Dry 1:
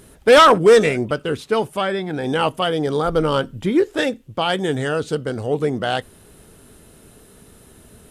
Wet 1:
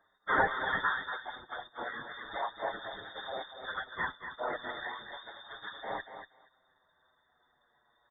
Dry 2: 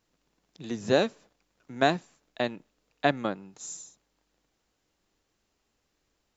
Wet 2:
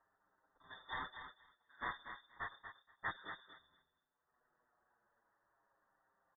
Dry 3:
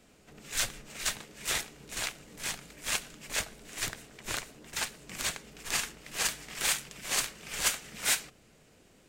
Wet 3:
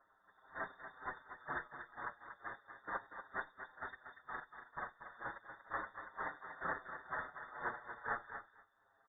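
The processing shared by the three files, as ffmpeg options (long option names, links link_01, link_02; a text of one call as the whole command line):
ffmpeg -i in.wav -filter_complex "[0:a]agate=range=-7dB:threshold=-38dB:ratio=16:detection=peak,highpass=frequency=160:poles=1,bandreject=frequency=60:width_type=h:width=6,bandreject=frequency=120:width_type=h:width=6,bandreject=frequency=180:width_type=h:width=6,bandreject=frequency=240:width_type=h:width=6,bandreject=frequency=300:width_type=h:width=6,acrossover=split=340|1900[link_01][link_02][link_03];[link_01]acrusher=samples=35:mix=1:aa=0.000001:lfo=1:lforange=35:lforate=4[link_04];[link_03]acompressor=mode=upward:threshold=-51dB:ratio=2.5[link_05];[link_04][link_02][link_05]amix=inputs=3:normalize=0,afftfilt=real='hypot(re,im)*cos(2*PI*random(0))':imag='hypot(re,im)*sin(2*PI*random(1))':win_size=512:overlap=0.75,asplit=2[link_06][link_07];[link_07]adelay=237,lowpass=frequency=2800:poles=1,volume=-6.5dB,asplit=2[link_08][link_09];[link_09]adelay=237,lowpass=frequency=2800:poles=1,volume=0.19,asplit=2[link_10][link_11];[link_11]adelay=237,lowpass=frequency=2800:poles=1,volume=0.19[link_12];[link_06][link_08][link_10][link_12]amix=inputs=4:normalize=0,lowpass=frequency=3100:width_type=q:width=0.5098,lowpass=frequency=3100:width_type=q:width=0.6013,lowpass=frequency=3100:width_type=q:width=0.9,lowpass=frequency=3100:width_type=q:width=2.563,afreqshift=-3700,asuperstop=centerf=2700:order=12:qfactor=1.3,asplit=2[link_13][link_14];[link_14]adelay=7,afreqshift=-0.34[link_15];[link_13][link_15]amix=inputs=2:normalize=1,volume=5dB" out.wav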